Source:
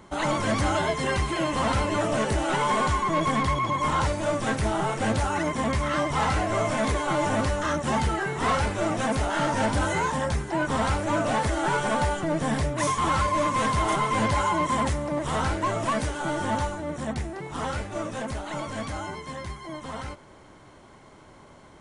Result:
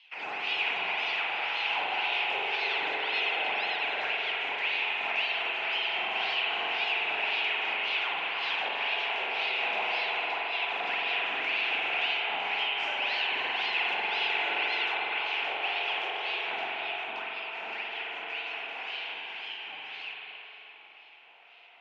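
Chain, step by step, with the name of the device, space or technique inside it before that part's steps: voice changer toy (ring modulator with a swept carrier 1.8 kHz, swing 75%, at 1.9 Hz; cabinet simulation 550–4400 Hz, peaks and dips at 550 Hz -6 dB, 780 Hz +7 dB, 1.2 kHz -8 dB, 1.7 kHz -5 dB, 2.6 kHz +9 dB, 3.9 kHz -4 dB); 18.82–19.78 s: doubling 45 ms -3 dB; feedback echo behind a low-pass 306 ms, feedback 52%, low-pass 2.2 kHz, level -4.5 dB; spring tank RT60 2.6 s, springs 44 ms, chirp 55 ms, DRR -2.5 dB; trim -8.5 dB

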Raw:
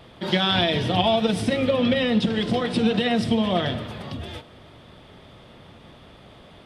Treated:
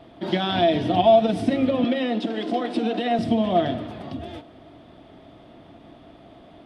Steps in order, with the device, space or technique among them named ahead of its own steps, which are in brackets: inside a helmet (treble shelf 5.8 kHz -6.5 dB; small resonant body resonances 300/670 Hz, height 13 dB, ringing for 35 ms); 1.84–3.19 s: high-pass 250 Hz 24 dB/octave; trim -5 dB

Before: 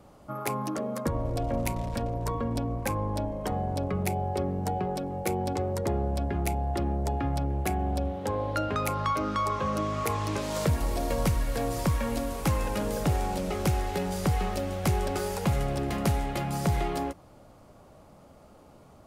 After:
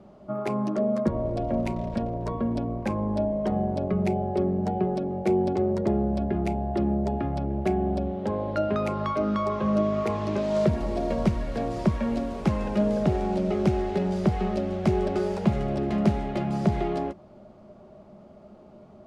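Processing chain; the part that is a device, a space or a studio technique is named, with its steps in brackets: inside a cardboard box (low-pass 4.6 kHz 12 dB/octave; small resonant body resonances 210/370/610 Hz, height 14 dB, ringing for 65 ms); trim -3 dB

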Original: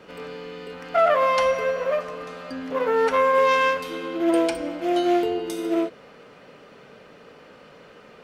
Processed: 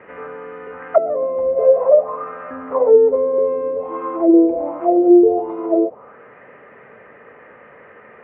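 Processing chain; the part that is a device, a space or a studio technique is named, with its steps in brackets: envelope filter bass rig (touch-sensitive low-pass 380–1900 Hz down, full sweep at -16.5 dBFS; cabinet simulation 70–2400 Hz, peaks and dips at 170 Hz -9 dB, 280 Hz -5 dB, 1.5 kHz -9 dB); trim +3.5 dB

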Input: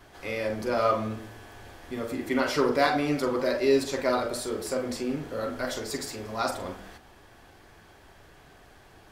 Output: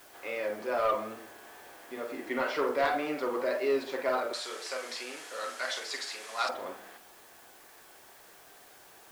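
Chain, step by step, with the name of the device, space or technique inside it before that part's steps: tape answering machine (band-pass 400–3000 Hz; saturation -17.5 dBFS, distortion -19 dB; wow and flutter; white noise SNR 23 dB); 4.33–6.49 s: frequency weighting ITU-R 468; trim -1.5 dB

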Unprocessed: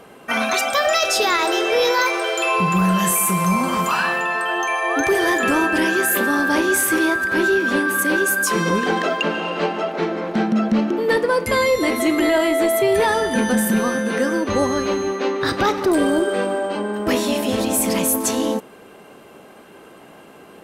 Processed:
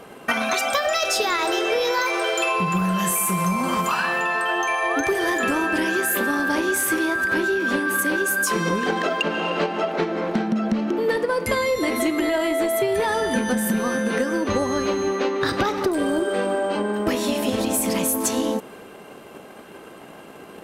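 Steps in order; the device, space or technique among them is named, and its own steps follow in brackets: drum-bus smash (transient shaper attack +8 dB, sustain +2 dB; compression 6:1, threshold -19 dBFS, peak gain reduction 10.5 dB; saturation -11.5 dBFS, distortion -26 dB); trim +1 dB

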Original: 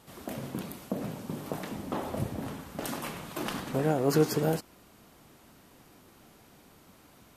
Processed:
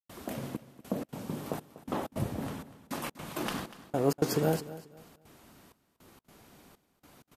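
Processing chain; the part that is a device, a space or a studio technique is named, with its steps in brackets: trance gate with a delay (trance gate ".xxxxx...xx" 160 bpm -60 dB; feedback delay 243 ms, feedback 27%, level -16 dB)

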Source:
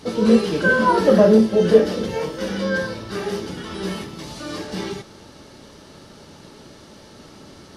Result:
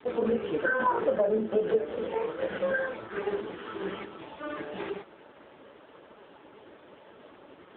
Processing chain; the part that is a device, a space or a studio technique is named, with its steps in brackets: voicemail (band-pass 370–2700 Hz; compression 6:1, threshold -22 dBFS, peak gain reduction 13 dB; AMR-NB 4.75 kbps 8 kHz)

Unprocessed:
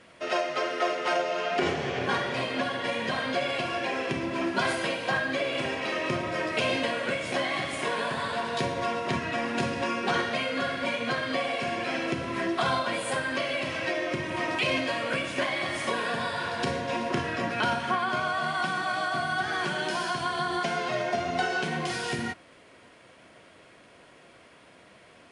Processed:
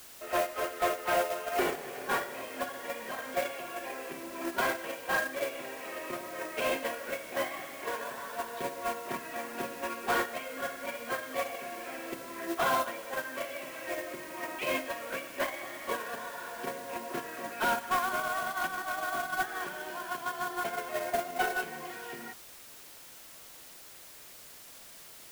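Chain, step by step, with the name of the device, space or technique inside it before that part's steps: aircraft radio (band-pass 310–2300 Hz; hard clipper -24 dBFS, distortion -17 dB; white noise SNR 10 dB; gate -28 dBFS, range -12 dB); trim +3 dB

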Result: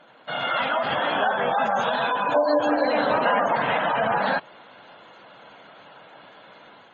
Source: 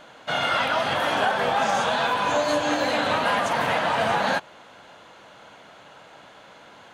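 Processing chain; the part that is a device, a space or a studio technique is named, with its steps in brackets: 2.34–3.56 s: dynamic bell 470 Hz, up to +4 dB, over -35 dBFS, Q 0.73; noise-suppressed video call (high-pass 110 Hz 12 dB/octave; spectral gate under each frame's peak -20 dB strong; level rider gain up to 4.5 dB; trim -4 dB; Opus 24 kbps 48 kHz)

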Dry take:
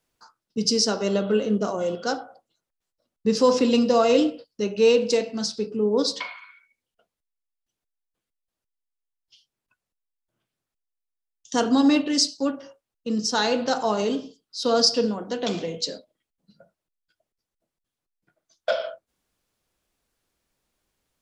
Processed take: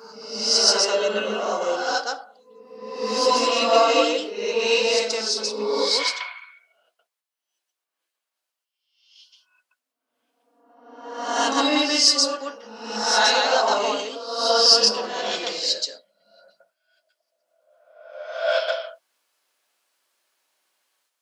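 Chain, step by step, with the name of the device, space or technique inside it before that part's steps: ghost voice (reverse; reverberation RT60 1.2 s, pre-delay 118 ms, DRR -6 dB; reverse; high-pass 760 Hz 12 dB/octave); trim +1 dB

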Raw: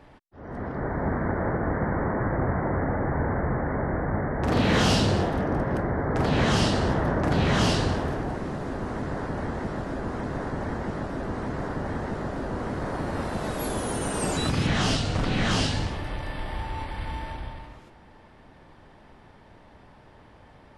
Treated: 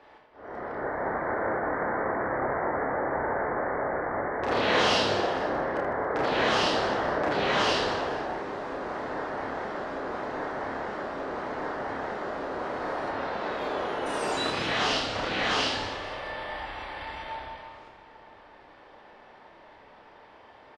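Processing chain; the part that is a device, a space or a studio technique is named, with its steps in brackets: compressed reverb return (on a send at -4.5 dB: reverberation RT60 2.0 s, pre-delay 50 ms + compression, threshold -38 dBFS, peak gain reduction 21.5 dB); 13.09–14.05 s: on the sum: low-pass 5.2 kHz -> 3.2 kHz 12 dB/octave; three-band isolator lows -20 dB, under 350 Hz, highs -17 dB, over 5.6 kHz; reverse bouncing-ball echo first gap 30 ms, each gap 1.6×, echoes 5

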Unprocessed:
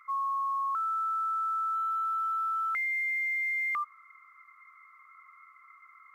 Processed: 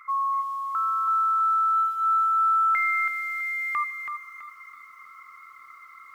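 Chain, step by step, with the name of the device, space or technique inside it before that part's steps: feedback echo behind a high-pass 153 ms, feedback 57%, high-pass 1.7 kHz, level -16 dB; dynamic bell 880 Hz, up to +6 dB, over -57 dBFS, Q 7.2; parallel compression (in parallel at -8 dB: compression 20:1, threshold -45 dBFS, peak gain reduction 17.5 dB); on the sum: bit-crushed delay 328 ms, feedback 35%, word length 11-bit, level -6 dB; trim +4.5 dB

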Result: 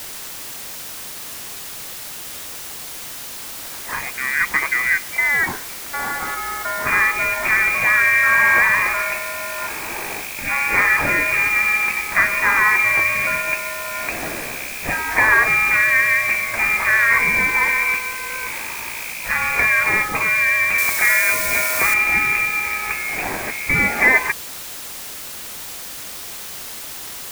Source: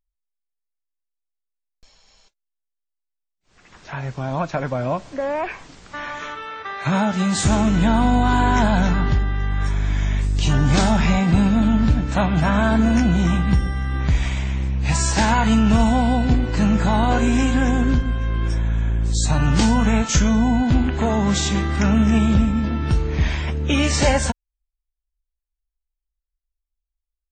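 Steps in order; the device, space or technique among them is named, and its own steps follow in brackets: scrambled radio voice (band-pass 320–3000 Hz; frequency inversion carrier 2.6 kHz; white noise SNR 12 dB); 20.78–21.94 s: tone controls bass -1 dB, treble +10 dB; trim +6 dB

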